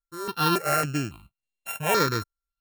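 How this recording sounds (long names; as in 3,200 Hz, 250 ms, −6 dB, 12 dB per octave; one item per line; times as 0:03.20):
a buzz of ramps at a fixed pitch in blocks of 32 samples
sample-and-hold tremolo
notches that jump at a steady rate 3.6 Hz 710–5,000 Hz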